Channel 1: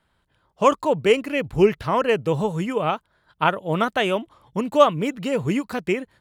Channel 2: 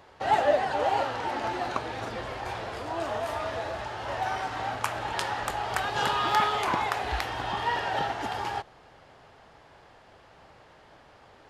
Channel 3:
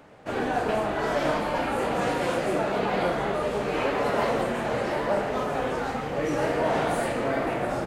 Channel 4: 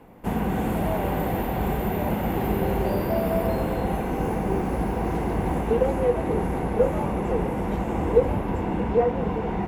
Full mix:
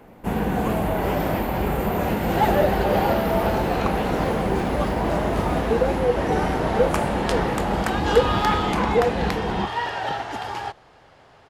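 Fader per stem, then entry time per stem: −16.0, +2.0, −4.0, +1.0 decibels; 0.00, 2.10, 0.00, 0.00 seconds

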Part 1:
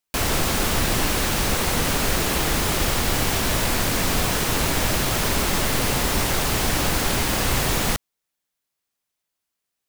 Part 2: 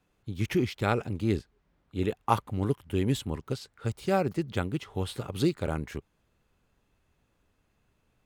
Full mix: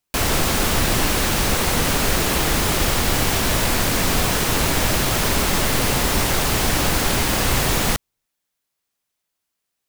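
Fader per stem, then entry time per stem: +2.5, −18.0 decibels; 0.00, 0.00 seconds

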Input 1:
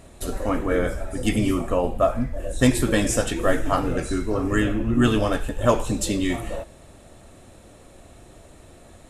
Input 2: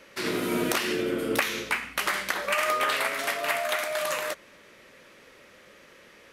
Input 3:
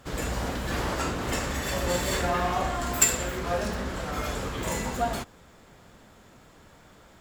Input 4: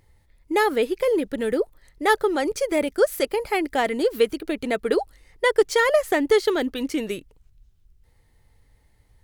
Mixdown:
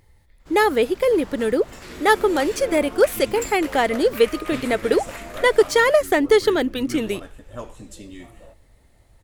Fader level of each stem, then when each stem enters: −16.0, −10.5, −12.5, +3.0 decibels; 1.90, 1.65, 0.40, 0.00 seconds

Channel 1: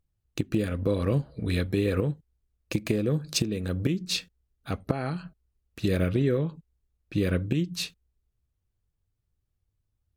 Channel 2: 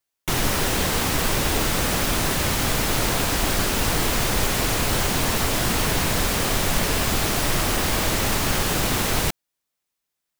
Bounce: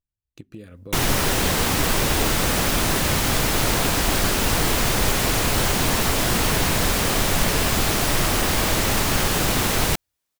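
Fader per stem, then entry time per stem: −13.5, +1.5 decibels; 0.00, 0.65 seconds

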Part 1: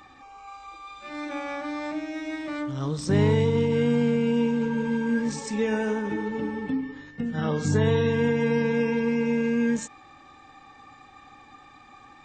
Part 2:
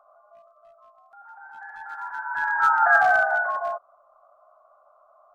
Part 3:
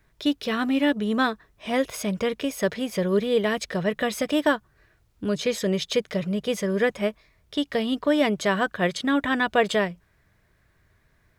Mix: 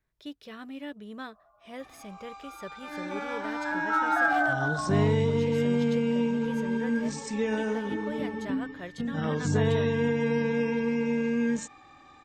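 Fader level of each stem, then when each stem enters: −3.0, −7.0, −17.5 decibels; 1.80, 1.30, 0.00 seconds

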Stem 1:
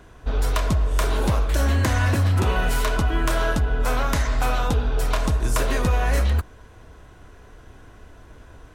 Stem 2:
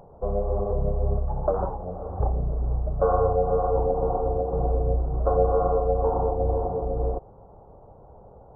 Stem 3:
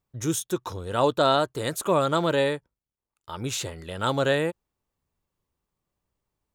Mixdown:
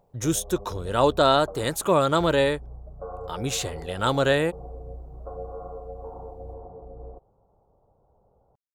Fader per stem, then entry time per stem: muted, −15.5 dB, +2.0 dB; muted, 0.00 s, 0.00 s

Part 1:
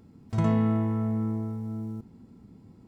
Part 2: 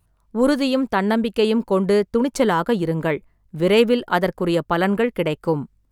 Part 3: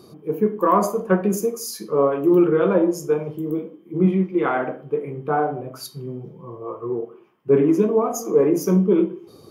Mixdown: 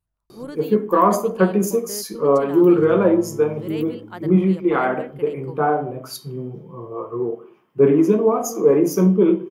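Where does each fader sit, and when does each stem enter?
−11.5, −17.5, +2.0 decibels; 2.45, 0.00, 0.30 seconds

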